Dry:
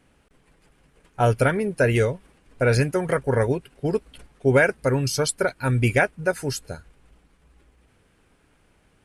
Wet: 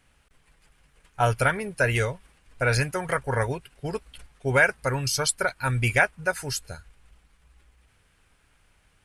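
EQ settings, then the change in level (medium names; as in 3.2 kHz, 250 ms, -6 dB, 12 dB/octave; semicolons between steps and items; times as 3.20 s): peaking EQ 310 Hz -12 dB 2.5 oct; dynamic bell 940 Hz, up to +4 dB, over -39 dBFS, Q 1; +1.5 dB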